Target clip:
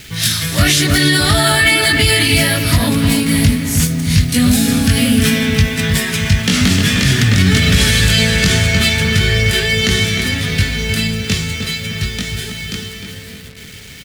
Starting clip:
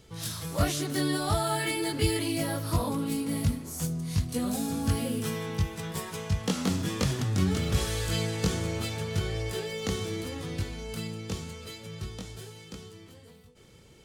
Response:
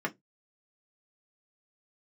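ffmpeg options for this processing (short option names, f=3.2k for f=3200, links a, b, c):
-filter_complex "[0:a]asplit=2[a][b];[b]highpass=f=270:w=0.5412,highpass=f=270:w=1.3066[c];[1:a]atrim=start_sample=2205[d];[c][d]afir=irnorm=-1:irlink=0,volume=-11dB[e];[a][e]amix=inputs=2:normalize=0,acrusher=bits=8:mix=0:aa=0.000001,equalizer=f=500:t=o:w=1:g=-6,equalizer=f=1k:t=o:w=1:g=-11,equalizer=f=2k:t=o:w=1:g=7,equalizer=f=4k:t=o:w=1:g=4,asplit=2[f][g];[g]adelay=306,lowpass=f=2.6k:p=1,volume=-7dB,asplit=2[h][i];[i]adelay=306,lowpass=f=2.6k:p=1,volume=0.52,asplit=2[j][k];[k]adelay=306,lowpass=f=2.6k:p=1,volume=0.52,asplit=2[l][m];[m]adelay=306,lowpass=f=2.6k:p=1,volume=0.52,asplit=2[n][o];[o]adelay=306,lowpass=f=2.6k:p=1,volume=0.52,asplit=2[p][q];[q]adelay=306,lowpass=f=2.6k:p=1,volume=0.52[r];[f][h][j][l][n][p][r]amix=inputs=7:normalize=0,alimiter=level_in=18dB:limit=-1dB:release=50:level=0:latency=1,volume=-1dB"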